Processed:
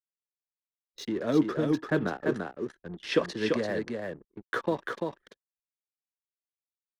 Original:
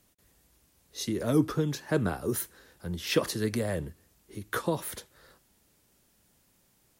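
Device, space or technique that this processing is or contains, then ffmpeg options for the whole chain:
pocket radio on a weak battery: -filter_complex "[0:a]highpass=250,lowpass=4.2k,aeval=exprs='sgn(val(0))*max(abs(val(0))-0.00316,0)':c=same,equalizer=f=1.7k:t=o:w=0.25:g=5,asettb=1/sr,asplit=3[a][b][c];[a]atrim=end=2.054[d];[b]atrim=start=2.05:end=3.64,asetpts=PTS-STARTPTS,afade=t=in:d=0.004:c=qsin,afade=t=out:st=1.586:d=0.004:c=qsin,lowpass=f=10k:w=0.5412,lowpass=f=10k:w=1.3066[e];[c]atrim=start=3.636[f];[d][e]acrossfade=d=0.004:c1=hsin:c2=qsin[g];[g][f]acrossfade=d=0.004:c1=qsin:c2=hsin,anlmdn=0.0398,lowshelf=f=410:g=4.5,aecho=1:1:341:0.631"

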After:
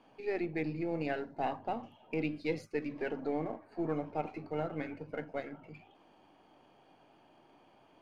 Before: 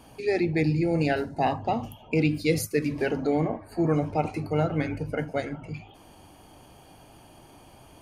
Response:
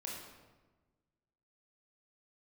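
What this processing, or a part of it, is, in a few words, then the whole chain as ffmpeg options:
crystal radio: -af "highpass=220,lowpass=3.1k,aeval=exprs='if(lt(val(0),0),0.708*val(0),val(0))':c=same,volume=-8dB"

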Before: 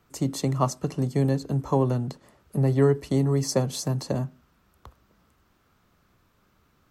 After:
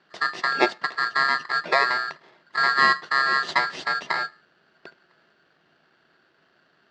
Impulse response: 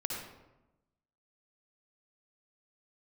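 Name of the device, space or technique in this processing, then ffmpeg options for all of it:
ring modulator pedal into a guitar cabinet: -af "aeval=exprs='val(0)*sgn(sin(2*PI*1500*n/s))':c=same,highpass=110,equalizer=f=110:t=q:w=4:g=-7,equalizer=f=160:t=q:w=4:g=8,equalizer=f=370:t=q:w=4:g=9,equalizer=f=660:t=q:w=4:g=9,equalizer=f=1.3k:t=q:w=4:g=-3,equalizer=f=2.5k:t=q:w=4:g=-5,lowpass=f=4.3k:w=0.5412,lowpass=f=4.3k:w=1.3066,volume=2.5dB"

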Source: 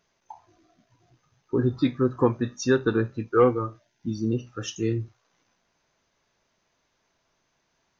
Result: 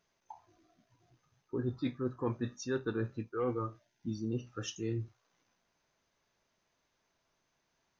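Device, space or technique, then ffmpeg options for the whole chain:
compression on the reversed sound: -af "areverse,acompressor=threshold=-24dB:ratio=6,areverse,volume=-6.5dB"

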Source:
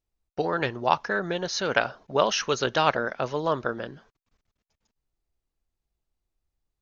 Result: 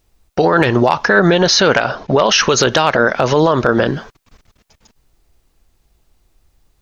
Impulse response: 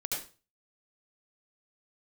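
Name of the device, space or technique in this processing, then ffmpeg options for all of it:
loud club master: -filter_complex "[0:a]acompressor=threshold=-26dB:ratio=2.5,asoftclip=type=hard:threshold=-16dB,alimiter=level_in=25.5dB:limit=-1dB:release=50:level=0:latency=1,asettb=1/sr,asplit=3[a][b][c];[a]atrim=end=1.064[d];[b]atrim=start=1.06:end=2.5,asetpts=PTS-STARTPTS,afade=t=in:d=0.004:c=qsin,afade=t=out:st=1.436:d=0.004:c=qsin,lowpass=f=6.2k:w=0.5412,lowpass=f=6.2k:w=1.3066[e];[c]atrim=start=2.496[f];[d][e]acrossfade=d=0.004:c1=hsin:c2=qsin[g];[g][f]acrossfade=d=0.004:c1=qsin:c2=hsin,volume=-1.5dB"

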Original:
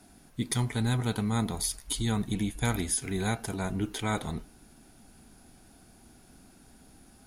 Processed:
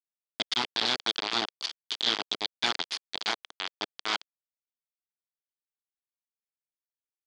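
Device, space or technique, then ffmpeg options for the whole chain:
hand-held game console: -af "acrusher=bits=3:mix=0:aa=0.000001,highpass=420,equalizer=f=540:t=q:w=4:g=-10,equalizer=f=3.3k:t=q:w=4:g=9,equalizer=f=4.6k:t=q:w=4:g=8,lowpass=f=5.4k:w=0.5412,lowpass=f=5.4k:w=1.3066"

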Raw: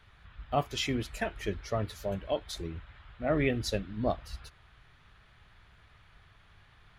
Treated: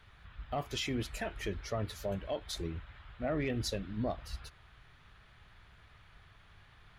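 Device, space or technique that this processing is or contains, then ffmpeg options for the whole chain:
soft clipper into limiter: -af "asoftclip=type=tanh:threshold=-18dB,alimiter=level_in=2.5dB:limit=-24dB:level=0:latency=1:release=87,volume=-2.5dB"

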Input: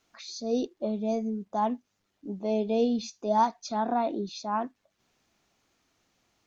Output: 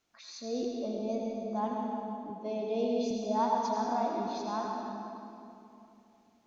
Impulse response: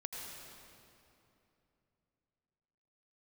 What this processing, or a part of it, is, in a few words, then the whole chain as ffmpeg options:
stairwell: -filter_complex "[1:a]atrim=start_sample=2205[a];[0:a][a]afir=irnorm=-1:irlink=0,asettb=1/sr,asplit=3[b][c][d];[b]atrim=end=2.304[e];[c]atrim=start=2.3:end=3.11,asetpts=PTS-STARTPTS,afade=t=in:d=0.004:c=qsin,afade=t=out:st=0.806:d=0.004:c=qsin,highpass=200[f];[d]atrim=start=3.106[g];[e][f]acrossfade=d=0.004:c1=hsin:c2=qsin[h];[h][g]acrossfade=d=0.004:c1=qsin:c2=hsin,volume=-3dB"

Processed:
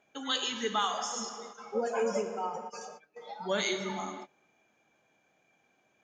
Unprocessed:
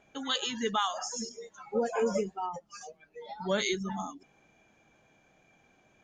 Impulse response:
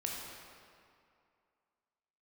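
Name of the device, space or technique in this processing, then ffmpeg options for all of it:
keyed gated reverb: -filter_complex "[0:a]asplit=3[a][b][c];[1:a]atrim=start_sample=2205[d];[b][d]afir=irnorm=-1:irlink=0[e];[c]apad=whole_len=266254[f];[e][f]sidechaingate=range=-28dB:threshold=-52dB:ratio=16:detection=peak,volume=-1dB[g];[a][g]amix=inputs=2:normalize=0,highpass=f=270:p=1,volume=-5dB"

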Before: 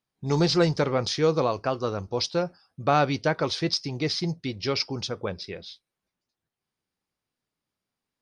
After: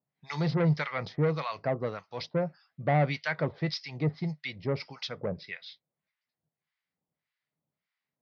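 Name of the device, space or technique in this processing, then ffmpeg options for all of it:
guitar amplifier with harmonic tremolo: -filter_complex "[0:a]acrossover=split=990[a][b];[a]aeval=exprs='val(0)*(1-1/2+1/2*cos(2*PI*1.7*n/s))':c=same[c];[b]aeval=exprs='val(0)*(1-1/2-1/2*cos(2*PI*1.7*n/s))':c=same[d];[c][d]amix=inputs=2:normalize=0,asoftclip=type=tanh:threshold=-22.5dB,highpass=100,equalizer=f=150:t=q:w=4:g=9,equalizer=f=350:t=q:w=4:g=-5,equalizer=f=630:t=q:w=4:g=4,equalizer=f=2k:t=q:w=4:g=10,lowpass=f=4.5k:w=0.5412,lowpass=f=4.5k:w=1.3066"

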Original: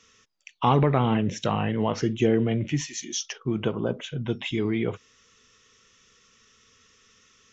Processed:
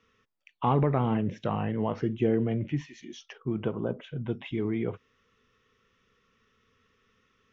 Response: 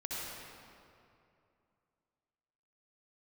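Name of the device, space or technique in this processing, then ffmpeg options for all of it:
phone in a pocket: -af "lowpass=3.3k,highshelf=f=2.3k:g=-9,volume=-3.5dB"

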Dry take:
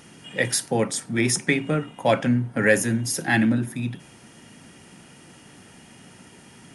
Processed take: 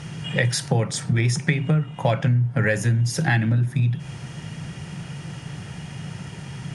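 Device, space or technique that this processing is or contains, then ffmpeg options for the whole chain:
jukebox: -af "lowpass=6.7k,lowshelf=f=190:t=q:w=3:g=7.5,acompressor=threshold=-27dB:ratio=5,volume=8.5dB"

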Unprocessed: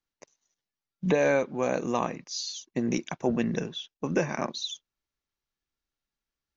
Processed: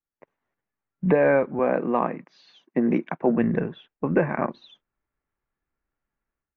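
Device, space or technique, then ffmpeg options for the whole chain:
action camera in a waterproof case: -filter_complex "[0:a]asettb=1/sr,asplit=3[a][b][c];[a]atrim=end=1.594[d];[b]atrim=start=1.59:end=3.38,asetpts=PTS-STARTPTS,afade=t=in:d=0.004:c=qsin,afade=t=out:st=1.786:d=0.004:c=qsin,highpass=f=160:w=0.5412,highpass=f=160:w=1.3066[e];[c]atrim=start=3.376[f];[d][e]acrossfade=d=0.004:c1=hsin:c2=qsin[g];[g][f]acrossfade=d=0.004:c1=qsin:c2=hsin,lowpass=f=2k:w=0.5412,lowpass=f=2k:w=1.3066,dynaudnorm=f=110:g=5:m=13.5dB,volume=-6dB" -ar 22050 -c:a aac -b:a 96k

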